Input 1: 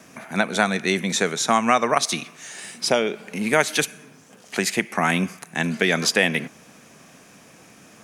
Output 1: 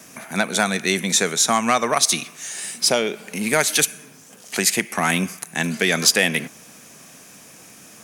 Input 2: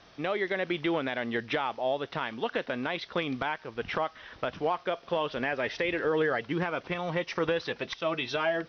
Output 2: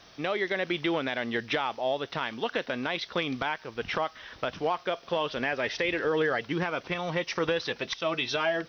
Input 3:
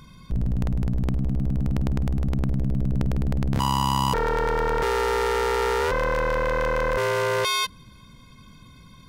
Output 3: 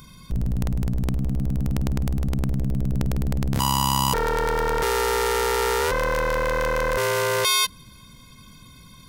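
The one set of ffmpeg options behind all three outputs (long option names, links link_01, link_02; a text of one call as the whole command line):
ffmpeg -i in.wav -af "acontrast=44,crystalizer=i=2:c=0,volume=-5.5dB" out.wav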